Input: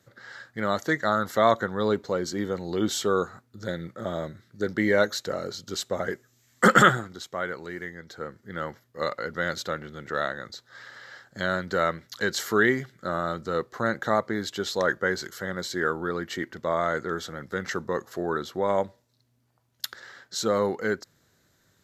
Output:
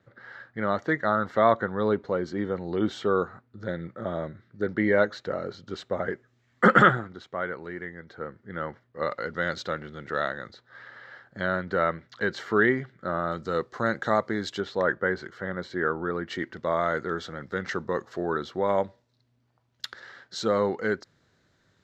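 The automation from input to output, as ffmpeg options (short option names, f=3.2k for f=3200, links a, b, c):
-af "asetnsamples=n=441:p=0,asendcmd='9.11 lowpass f 4400;10.52 lowpass f 2500;13.32 lowpass f 5900;14.6 lowpass f 2200;16.27 lowpass f 4400',lowpass=2.4k"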